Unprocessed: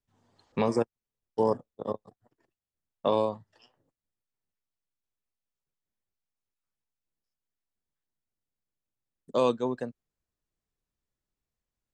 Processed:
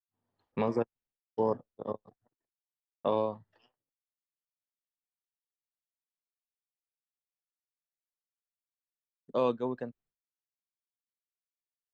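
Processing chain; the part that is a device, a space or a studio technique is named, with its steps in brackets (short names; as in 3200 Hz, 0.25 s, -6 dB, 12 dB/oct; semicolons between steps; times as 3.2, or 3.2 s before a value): hearing-loss simulation (LPF 3100 Hz 12 dB/oct; expander -59 dBFS); gain -3.5 dB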